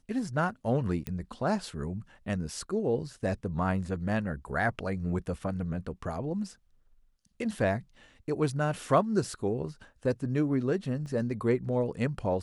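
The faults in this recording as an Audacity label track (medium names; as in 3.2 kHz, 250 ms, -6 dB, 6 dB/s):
1.070000	1.070000	pop -21 dBFS
11.060000	11.060000	dropout 2.1 ms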